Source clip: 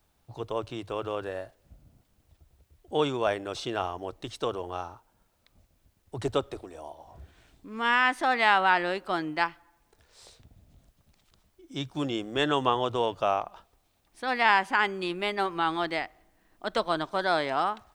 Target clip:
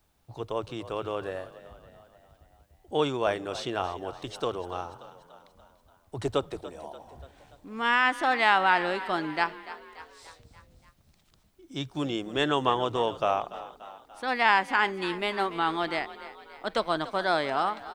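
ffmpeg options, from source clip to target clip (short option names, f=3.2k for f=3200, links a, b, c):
-filter_complex "[0:a]asplit=6[a][b][c][d][e][f];[b]adelay=290,afreqshift=40,volume=-15.5dB[g];[c]adelay=580,afreqshift=80,volume=-20.5dB[h];[d]adelay=870,afreqshift=120,volume=-25.6dB[i];[e]adelay=1160,afreqshift=160,volume=-30.6dB[j];[f]adelay=1450,afreqshift=200,volume=-35.6dB[k];[a][g][h][i][j][k]amix=inputs=6:normalize=0"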